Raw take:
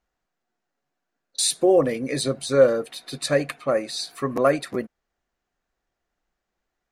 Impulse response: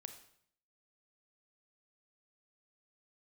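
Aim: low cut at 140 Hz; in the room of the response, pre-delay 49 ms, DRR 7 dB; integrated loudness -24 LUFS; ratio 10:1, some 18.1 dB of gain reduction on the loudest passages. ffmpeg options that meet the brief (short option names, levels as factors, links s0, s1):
-filter_complex "[0:a]highpass=140,acompressor=threshold=0.0355:ratio=10,asplit=2[s0][s1];[1:a]atrim=start_sample=2205,adelay=49[s2];[s1][s2]afir=irnorm=-1:irlink=0,volume=0.794[s3];[s0][s3]amix=inputs=2:normalize=0,volume=2.82"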